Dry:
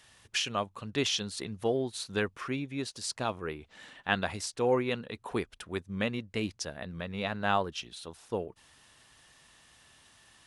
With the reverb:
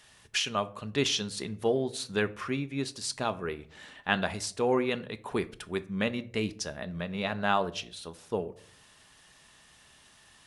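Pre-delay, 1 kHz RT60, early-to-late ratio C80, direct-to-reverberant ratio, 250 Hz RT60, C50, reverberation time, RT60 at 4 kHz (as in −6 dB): 5 ms, 0.45 s, 22.5 dB, 11.5 dB, 0.70 s, 19.0 dB, 0.55 s, 0.30 s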